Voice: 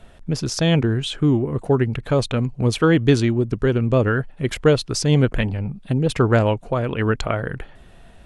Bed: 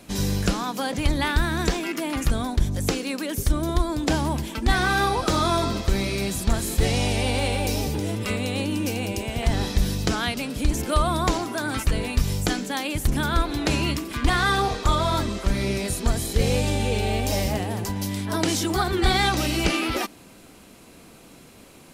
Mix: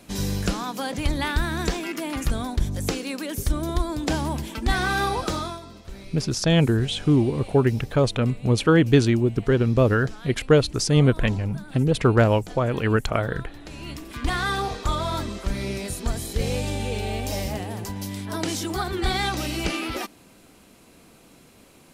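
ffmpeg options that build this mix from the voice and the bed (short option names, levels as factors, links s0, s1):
-filter_complex "[0:a]adelay=5850,volume=0.891[s0];[1:a]volume=3.98,afade=t=out:st=5.19:d=0.41:silence=0.158489,afade=t=in:st=13.72:d=0.59:silence=0.199526[s1];[s0][s1]amix=inputs=2:normalize=0"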